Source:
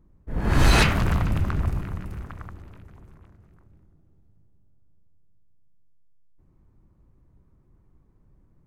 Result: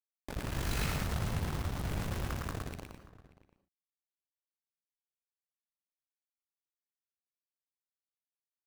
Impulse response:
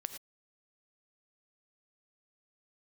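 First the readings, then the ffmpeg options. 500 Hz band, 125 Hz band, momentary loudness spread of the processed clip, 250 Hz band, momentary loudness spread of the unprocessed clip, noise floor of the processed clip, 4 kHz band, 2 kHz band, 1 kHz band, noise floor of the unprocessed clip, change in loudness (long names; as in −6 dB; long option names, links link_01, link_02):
−11.0 dB, −11.5 dB, 11 LU, −11.5 dB, 21 LU, below −85 dBFS, −12.5 dB, −14.0 dB, −12.5 dB, −60 dBFS, −13.0 dB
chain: -filter_complex "[0:a]highpass=frequency=49:poles=1,lowshelf=frequency=180:gain=5.5,bandreject=frequency=201.8:width_type=h:width=4,bandreject=frequency=403.6:width_type=h:width=4,bandreject=frequency=605.4:width_type=h:width=4,bandreject=frequency=807.2:width_type=h:width=4,bandreject=frequency=1009:width_type=h:width=4,bandreject=frequency=1210.8:width_type=h:width=4,bandreject=frequency=1412.6:width_type=h:width=4,bandreject=frequency=1614.4:width_type=h:width=4,bandreject=frequency=1816.2:width_type=h:width=4,bandreject=frequency=2018:width_type=h:width=4,bandreject=frequency=2219.8:width_type=h:width=4,bandreject=frequency=2421.6:width_type=h:width=4,bandreject=frequency=2623.4:width_type=h:width=4,bandreject=frequency=2825.2:width_type=h:width=4,bandreject=frequency=3027:width_type=h:width=4,bandreject=frequency=3228.8:width_type=h:width=4,bandreject=frequency=3430.6:width_type=h:width=4,bandreject=frequency=3632.4:width_type=h:width=4,bandreject=frequency=3834.2:width_type=h:width=4,bandreject=frequency=4036:width_type=h:width=4,bandreject=frequency=4237.8:width_type=h:width=4,bandreject=frequency=4439.6:width_type=h:width=4,bandreject=frequency=4641.4:width_type=h:width=4,bandreject=frequency=4843.2:width_type=h:width=4,bandreject=frequency=5045:width_type=h:width=4,bandreject=frequency=5246.8:width_type=h:width=4,bandreject=frequency=5448.6:width_type=h:width=4,bandreject=frequency=5650.4:width_type=h:width=4,bandreject=frequency=5852.2:width_type=h:width=4,bandreject=frequency=6054:width_type=h:width=4,bandreject=frequency=6255.8:width_type=h:width=4,bandreject=frequency=6457.6:width_type=h:width=4,bandreject=frequency=6659.4:width_type=h:width=4,bandreject=frequency=6861.2:width_type=h:width=4,bandreject=frequency=7063:width_type=h:width=4,bandreject=frequency=7264.8:width_type=h:width=4,bandreject=frequency=7466.6:width_type=h:width=4,bandreject=frequency=7668.4:width_type=h:width=4,bandreject=frequency=7870.2:width_type=h:width=4,areverse,acompressor=threshold=-30dB:ratio=8,areverse,acrusher=bits=5:mix=0:aa=0.000001,tremolo=f=49:d=0.824,asplit=2[link_01][link_02];[link_02]adelay=583.1,volume=-18dB,highshelf=frequency=4000:gain=-13.1[link_03];[link_01][link_03]amix=inputs=2:normalize=0,asplit=2[link_04][link_05];[1:a]atrim=start_sample=2205,adelay=113[link_06];[link_05][link_06]afir=irnorm=-1:irlink=0,volume=-2dB[link_07];[link_04][link_07]amix=inputs=2:normalize=0"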